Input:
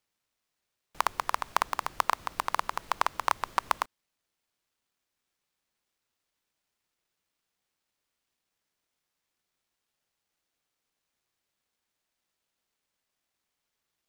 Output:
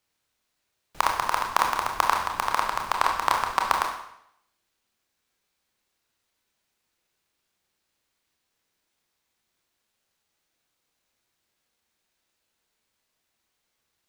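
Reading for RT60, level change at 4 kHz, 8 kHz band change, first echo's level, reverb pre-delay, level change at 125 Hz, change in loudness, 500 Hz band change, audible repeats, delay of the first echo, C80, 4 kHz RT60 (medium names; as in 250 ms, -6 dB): 0.75 s, +6.5 dB, +6.0 dB, no echo, 25 ms, +6.5 dB, +6.0 dB, +6.0 dB, no echo, no echo, 8.0 dB, 0.70 s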